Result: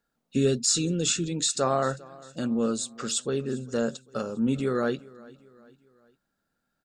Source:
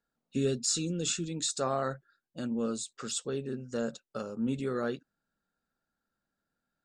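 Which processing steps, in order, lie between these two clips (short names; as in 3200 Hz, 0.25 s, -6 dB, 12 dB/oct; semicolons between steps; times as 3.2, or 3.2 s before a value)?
feedback echo 0.399 s, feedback 46%, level -22 dB; gain +6 dB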